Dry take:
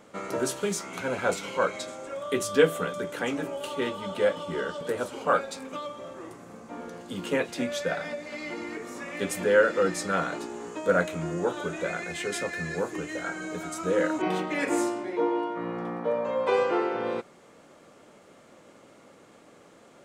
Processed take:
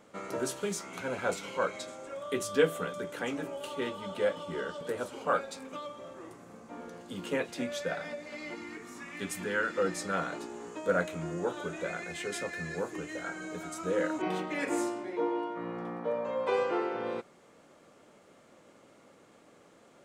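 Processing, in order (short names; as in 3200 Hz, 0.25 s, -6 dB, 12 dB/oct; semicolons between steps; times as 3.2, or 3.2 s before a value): 8.55–9.78 bell 550 Hz -12.5 dB 0.62 oct; gain -5 dB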